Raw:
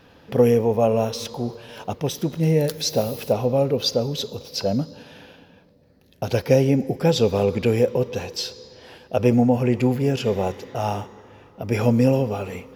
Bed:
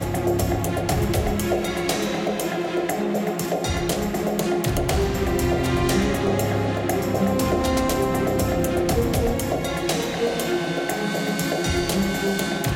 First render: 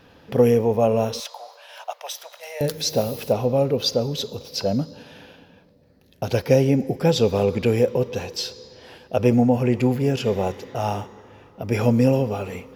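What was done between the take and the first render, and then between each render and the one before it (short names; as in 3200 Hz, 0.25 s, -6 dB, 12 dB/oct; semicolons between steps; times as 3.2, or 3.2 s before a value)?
1.2–2.61 elliptic high-pass 610 Hz, stop band 50 dB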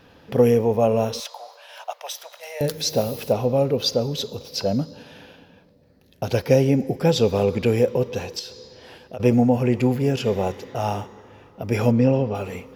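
8.39–9.2 compressor 2.5:1, threshold -35 dBFS; 11.91–12.35 air absorption 150 m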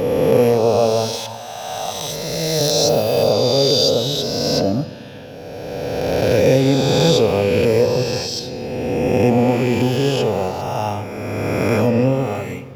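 spectral swells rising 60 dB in 2.75 s; shoebox room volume 1700 m³, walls mixed, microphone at 0.45 m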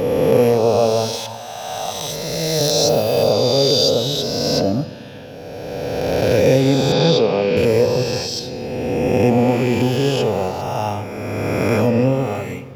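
6.92–7.57 elliptic band-pass 140–5000 Hz, stop band 60 dB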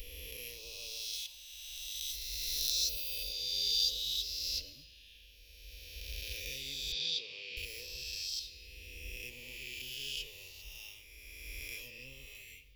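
inverse Chebyshev band-stop 100–1500 Hz, stop band 40 dB; bell 6300 Hz -13.5 dB 2.7 oct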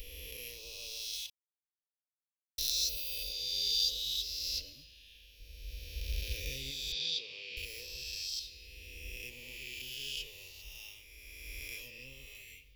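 1.3–2.58 mute; 5.4–6.71 low shelf 380 Hz +9 dB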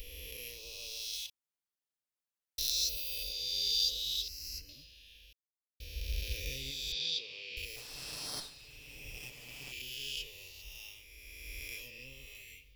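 4.28–4.69 fixed phaser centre 1500 Hz, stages 4; 5.33–5.8 mute; 7.76–9.72 minimum comb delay 6.9 ms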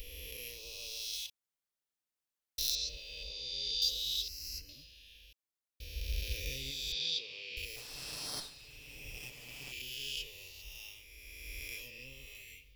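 2.75–3.82 air absorption 130 m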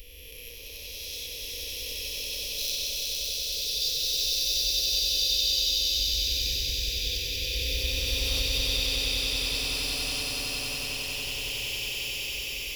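on a send: swelling echo 94 ms, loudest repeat 5, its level -5 dB; on the sum: bloom reverb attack 1.62 s, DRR -6 dB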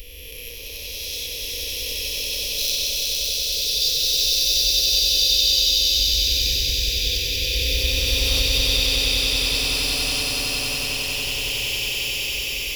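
gain +7.5 dB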